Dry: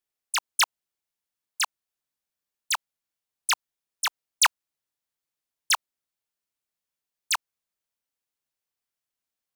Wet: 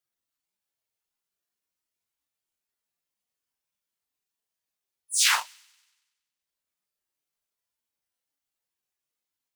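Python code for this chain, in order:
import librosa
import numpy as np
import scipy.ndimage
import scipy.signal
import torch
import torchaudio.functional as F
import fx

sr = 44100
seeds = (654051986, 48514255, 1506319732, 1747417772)

y = fx.paulstretch(x, sr, seeds[0], factor=4.0, window_s=0.05, from_s=6.01)
y = fx.echo_wet_highpass(y, sr, ms=94, feedback_pct=55, hz=2800.0, wet_db=-11.5)
y = fx.transient(y, sr, attack_db=6, sustain_db=-11)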